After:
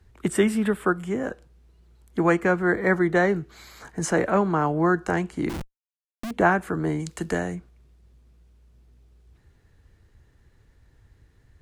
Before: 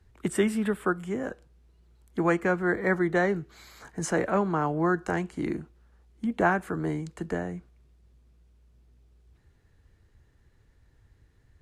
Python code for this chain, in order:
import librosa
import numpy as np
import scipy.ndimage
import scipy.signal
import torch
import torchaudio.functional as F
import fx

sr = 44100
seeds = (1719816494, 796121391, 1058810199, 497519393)

y = fx.schmitt(x, sr, flips_db=-35.5, at=(5.49, 6.31))
y = fx.high_shelf(y, sr, hz=2500.0, db=10.5, at=(6.99, 7.54), fade=0.02)
y = y * librosa.db_to_amplitude(4.0)